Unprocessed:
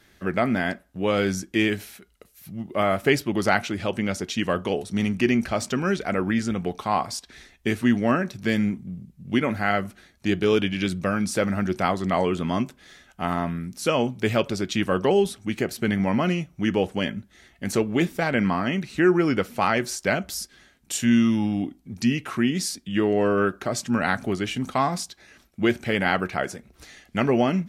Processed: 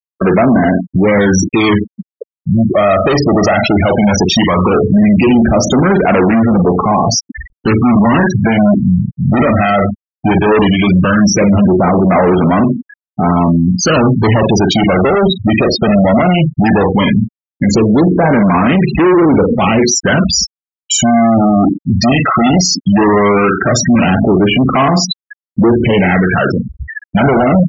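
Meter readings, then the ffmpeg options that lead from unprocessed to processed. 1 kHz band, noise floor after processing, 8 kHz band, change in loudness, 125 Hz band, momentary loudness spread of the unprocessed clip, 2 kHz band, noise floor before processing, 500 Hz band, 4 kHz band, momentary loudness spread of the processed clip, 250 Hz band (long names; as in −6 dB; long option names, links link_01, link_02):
+13.5 dB, below −85 dBFS, +16.0 dB, +13.5 dB, +16.5 dB, 9 LU, +10.0 dB, −59 dBFS, +13.0 dB, +13.5 dB, 5 LU, +14.5 dB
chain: -filter_complex "[0:a]acrossover=split=440[link_01][link_02];[link_02]acompressor=threshold=-22dB:ratio=6[link_03];[link_01][link_03]amix=inputs=2:normalize=0,acrossover=split=1200[link_04][link_05];[link_04]acrusher=bits=6:mode=log:mix=0:aa=0.000001[link_06];[link_05]highshelf=frequency=2100:gain=-7[link_07];[link_06][link_07]amix=inputs=2:normalize=0,asplit=2[link_08][link_09];[link_09]adelay=44,volume=-9dB[link_10];[link_08][link_10]amix=inputs=2:normalize=0,aecho=1:1:88|176:0.0891|0.0241,aresample=16000,volume=27dB,asoftclip=hard,volume=-27dB,aresample=44100,aphaser=in_gain=1:out_gain=1:delay=1.6:decay=0.44:speed=0.16:type=sinusoidal,afftfilt=real='re*gte(hypot(re,im),0.0282)':imag='im*gte(hypot(re,im),0.0282)':win_size=1024:overlap=0.75,equalizer=frequency=6100:width_type=o:width=1.5:gain=6,acompressor=threshold=-32dB:ratio=2.5,highpass=frequency=95:poles=1,alimiter=level_in=33.5dB:limit=-1dB:release=50:level=0:latency=1,volume=-3dB"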